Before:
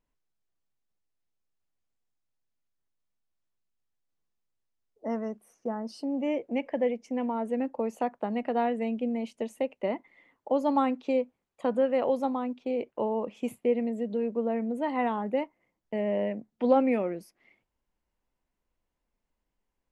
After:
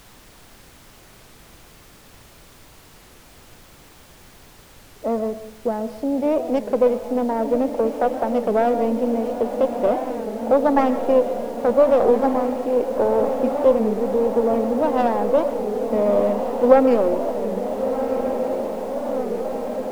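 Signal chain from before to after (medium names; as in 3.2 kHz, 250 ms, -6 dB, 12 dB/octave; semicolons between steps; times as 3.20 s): tracing distortion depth 0.24 ms; peaking EQ 590 Hz +9.5 dB 2.1 oct; echo that smears into a reverb 1423 ms, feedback 75%, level -8.5 dB; in parallel at -5 dB: one-sided clip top -23.5 dBFS; on the sum: tilt shelf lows +5 dB, about 1.4 kHz; on a send at -13 dB: reverberation RT60 0.75 s, pre-delay 85 ms; on the sum: added noise pink -42 dBFS; warped record 33 1/3 rpm, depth 160 cents; trim -5 dB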